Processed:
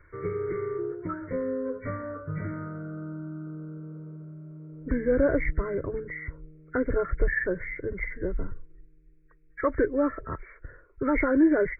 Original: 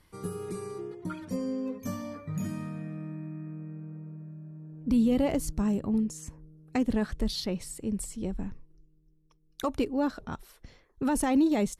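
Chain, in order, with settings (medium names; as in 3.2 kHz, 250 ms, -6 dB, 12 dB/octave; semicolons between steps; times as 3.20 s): knee-point frequency compression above 1.3 kHz 4:1; treble shelf 2 kHz -9.5 dB; static phaser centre 800 Hz, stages 6; trim +8.5 dB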